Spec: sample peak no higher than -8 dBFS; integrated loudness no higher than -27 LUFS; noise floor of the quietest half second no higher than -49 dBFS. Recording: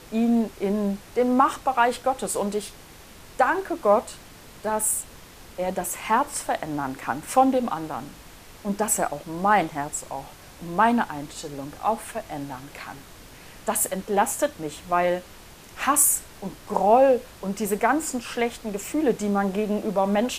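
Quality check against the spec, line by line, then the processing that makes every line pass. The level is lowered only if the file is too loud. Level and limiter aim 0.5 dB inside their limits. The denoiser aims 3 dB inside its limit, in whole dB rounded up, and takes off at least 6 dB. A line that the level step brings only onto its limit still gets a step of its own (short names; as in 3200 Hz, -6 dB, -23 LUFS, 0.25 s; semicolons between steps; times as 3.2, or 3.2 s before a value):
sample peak -6.5 dBFS: fail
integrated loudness -24.0 LUFS: fail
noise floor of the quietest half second -46 dBFS: fail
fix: gain -3.5 dB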